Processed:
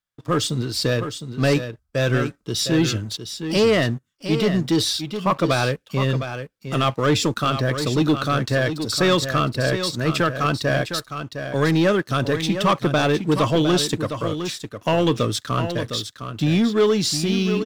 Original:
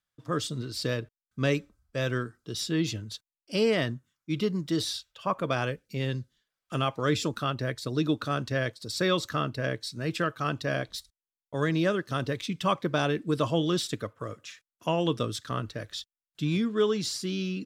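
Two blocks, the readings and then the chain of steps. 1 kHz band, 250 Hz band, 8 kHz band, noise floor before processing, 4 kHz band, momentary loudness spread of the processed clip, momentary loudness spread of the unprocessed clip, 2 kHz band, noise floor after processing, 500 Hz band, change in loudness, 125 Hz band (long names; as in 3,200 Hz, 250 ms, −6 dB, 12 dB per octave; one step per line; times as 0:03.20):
+8.5 dB, +9.0 dB, +10.5 dB, below −85 dBFS, +9.5 dB, 9 LU, 11 LU, +8.5 dB, −63 dBFS, +8.5 dB, +8.5 dB, +9.0 dB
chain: leveller curve on the samples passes 2
on a send: single-tap delay 709 ms −9 dB
on the sum: level +2.5 dB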